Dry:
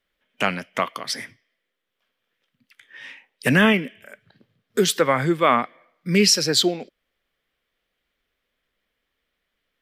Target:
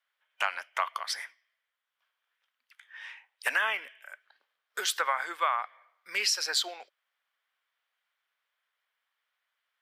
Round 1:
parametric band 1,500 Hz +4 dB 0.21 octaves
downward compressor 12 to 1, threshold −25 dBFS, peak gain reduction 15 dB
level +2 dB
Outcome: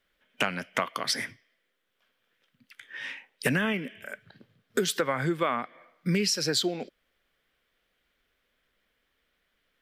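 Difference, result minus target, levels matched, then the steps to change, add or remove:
1,000 Hz band −3.0 dB
add first: four-pole ladder high-pass 750 Hz, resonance 40%

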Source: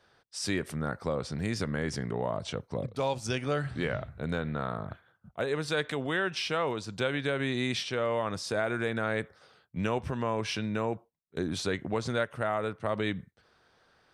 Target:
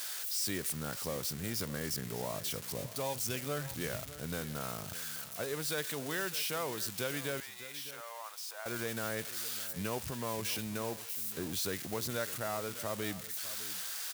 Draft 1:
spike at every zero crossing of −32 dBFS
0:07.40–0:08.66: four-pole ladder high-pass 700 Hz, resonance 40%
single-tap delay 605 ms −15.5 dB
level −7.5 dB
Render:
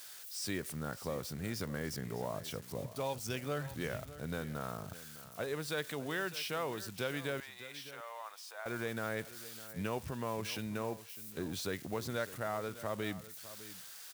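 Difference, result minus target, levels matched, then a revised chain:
spike at every zero crossing: distortion −10 dB
spike at every zero crossing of −21.5 dBFS
0:07.40–0:08.66: four-pole ladder high-pass 700 Hz, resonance 40%
single-tap delay 605 ms −15.5 dB
level −7.5 dB

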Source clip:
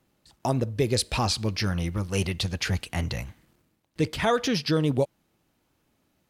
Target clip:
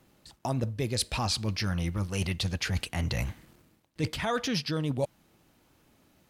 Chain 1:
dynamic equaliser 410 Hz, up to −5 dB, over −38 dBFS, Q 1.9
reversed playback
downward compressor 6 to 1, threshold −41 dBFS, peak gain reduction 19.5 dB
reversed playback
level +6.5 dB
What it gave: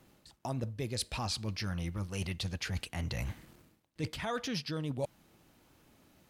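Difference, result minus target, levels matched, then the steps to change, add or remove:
downward compressor: peak gain reduction +6 dB
change: downward compressor 6 to 1, threshold −33.5 dBFS, peak gain reduction 13 dB

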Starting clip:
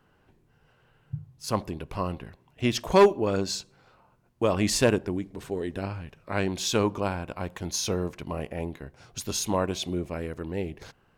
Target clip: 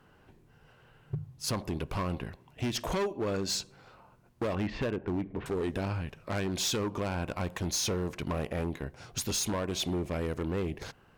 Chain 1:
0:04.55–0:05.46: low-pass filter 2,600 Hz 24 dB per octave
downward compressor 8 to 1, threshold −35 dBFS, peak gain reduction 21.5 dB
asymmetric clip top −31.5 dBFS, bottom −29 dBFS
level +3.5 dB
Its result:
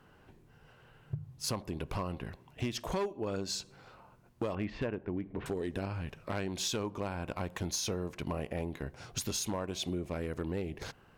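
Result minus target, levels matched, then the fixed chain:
downward compressor: peak gain reduction +6 dB
0:04.55–0:05.46: low-pass filter 2,600 Hz 24 dB per octave
downward compressor 8 to 1, threshold −28 dBFS, peak gain reduction 15 dB
asymmetric clip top −31.5 dBFS, bottom −29 dBFS
level +3.5 dB

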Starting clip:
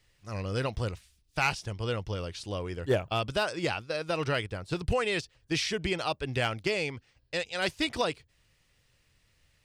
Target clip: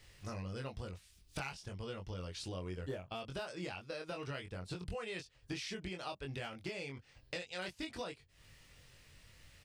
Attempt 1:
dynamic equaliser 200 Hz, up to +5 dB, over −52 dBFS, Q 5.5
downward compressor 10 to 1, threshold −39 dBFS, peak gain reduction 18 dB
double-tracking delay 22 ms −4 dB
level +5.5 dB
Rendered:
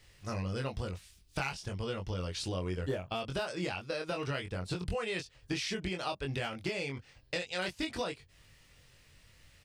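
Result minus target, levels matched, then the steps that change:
downward compressor: peak gain reduction −7 dB
change: downward compressor 10 to 1, threshold −47 dBFS, peak gain reduction 25 dB

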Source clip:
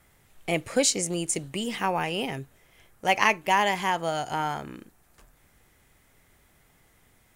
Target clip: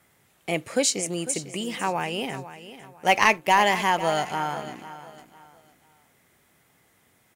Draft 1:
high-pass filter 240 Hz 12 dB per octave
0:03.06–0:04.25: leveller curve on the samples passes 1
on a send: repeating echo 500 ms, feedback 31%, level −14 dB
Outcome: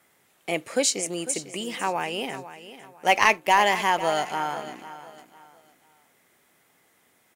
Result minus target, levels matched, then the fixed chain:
125 Hz band −6.0 dB
high-pass filter 120 Hz 12 dB per octave
0:03.06–0:04.25: leveller curve on the samples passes 1
on a send: repeating echo 500 ms, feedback 31%, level −14 dB

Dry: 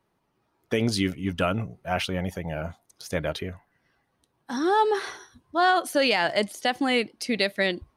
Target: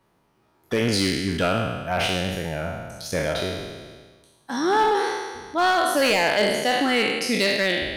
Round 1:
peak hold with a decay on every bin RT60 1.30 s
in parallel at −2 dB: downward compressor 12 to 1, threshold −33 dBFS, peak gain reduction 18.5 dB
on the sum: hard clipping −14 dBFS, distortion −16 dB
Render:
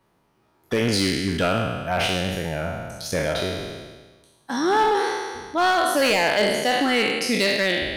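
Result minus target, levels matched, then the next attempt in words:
downward compressor: peak gain reduction −8 dB
peak hold with a decay on every bin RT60 1.30 s
in parallel at −2 dB: downward compressor 12 to 1, threshold −42 dBFS, peak gain reduction 27 dB
on the sum: hard clipping −14 dBFS, distortion −17 dB

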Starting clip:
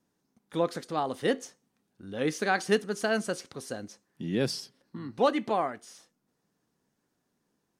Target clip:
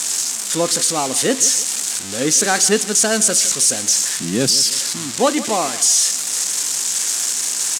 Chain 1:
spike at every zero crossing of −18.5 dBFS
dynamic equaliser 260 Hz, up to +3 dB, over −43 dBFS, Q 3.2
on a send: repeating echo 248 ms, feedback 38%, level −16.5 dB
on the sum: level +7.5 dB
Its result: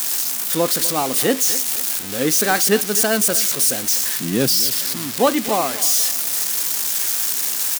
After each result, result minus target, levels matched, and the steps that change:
echo 88 ms late; 8,000 Hz band −4.0 dB
change: repeating echo 160 ms, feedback 38%, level −16.5 dB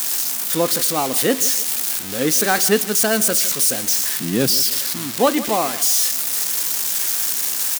8,000 Hz band −4.0 dB
add after dynamic equaliser: low-pass with resonance 7,600 Hz, resonance Q 2.5

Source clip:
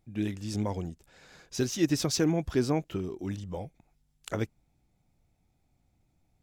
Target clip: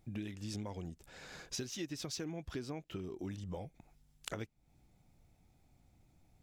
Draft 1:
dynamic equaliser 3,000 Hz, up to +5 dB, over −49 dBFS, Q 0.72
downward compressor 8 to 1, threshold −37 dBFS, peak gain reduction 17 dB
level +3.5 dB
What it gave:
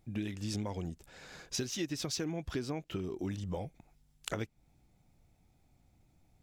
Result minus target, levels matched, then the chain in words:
downward compressor: peak gain reduction −5 dB
dynamic equaliser 3,000 Hz, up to +5 dB, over −49 dBFS, Q 0.72
downward compressor 8 to 1, threshold −43 dBFS, peak gain reduction 22.5 dB
level +3.5 dB

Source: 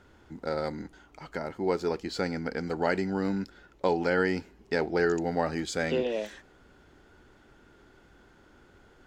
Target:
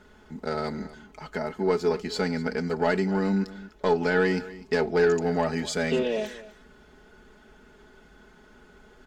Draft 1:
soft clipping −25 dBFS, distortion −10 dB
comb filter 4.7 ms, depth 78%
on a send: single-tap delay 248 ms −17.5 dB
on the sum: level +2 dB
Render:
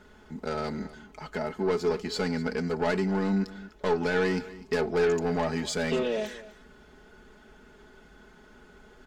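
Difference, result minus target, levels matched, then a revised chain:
soft clipping: distortion +9 dB
soft clipping −17 dBFS, distortion −19 dB
comb filter 4.7 ms, depth 78%
on a send: single-tap delay 248 ms −17.5 dB
on the sum: level +2 dB

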